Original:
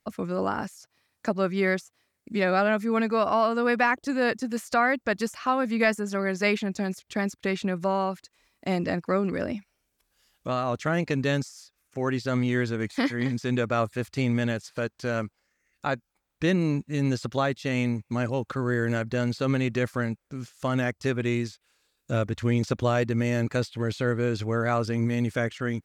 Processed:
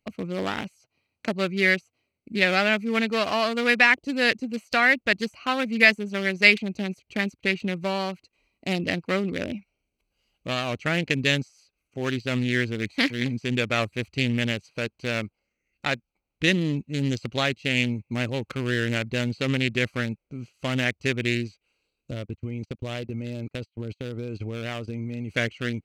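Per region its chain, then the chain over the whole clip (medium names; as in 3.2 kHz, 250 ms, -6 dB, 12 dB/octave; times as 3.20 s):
22.11–25.30 s: compression 10:1, threshold -26 dBFS + gate -35 dBFS, range -28 dB
whole clip: local Wiener filter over 25 samples; resonant high shelf 1.6 kHz +11 dB, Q 1.5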